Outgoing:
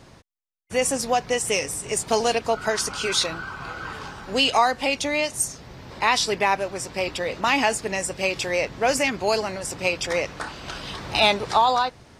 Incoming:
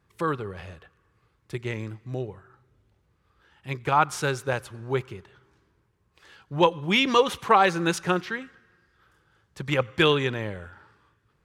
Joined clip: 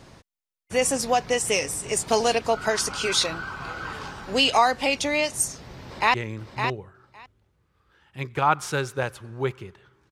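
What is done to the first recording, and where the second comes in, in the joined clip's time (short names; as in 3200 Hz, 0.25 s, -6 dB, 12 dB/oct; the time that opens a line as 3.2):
outgoing
5.82–6.14 echo throw 0.56 s, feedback 10%, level -6.5 dB
6.14 switch to incoming from 1.64 s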